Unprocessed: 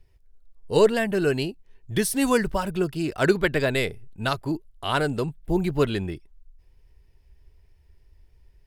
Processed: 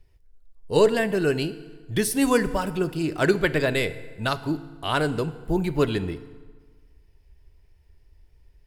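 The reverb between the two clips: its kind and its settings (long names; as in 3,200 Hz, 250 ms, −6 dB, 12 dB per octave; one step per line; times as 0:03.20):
feedback delay network reverb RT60 1.5 s, low-frequency decay 1×, high-frequency decay 0.75×, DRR 13 dB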